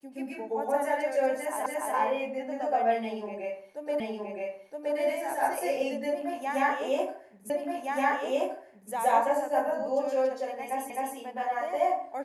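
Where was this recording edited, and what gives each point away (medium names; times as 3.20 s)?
1.66 s: repeat of the last 0.29 s
4.00 s: repeat of the last 0.97 s
7.50 s: repeat of the last 1.42 s
10.90 s: repeat of the last 0.26 s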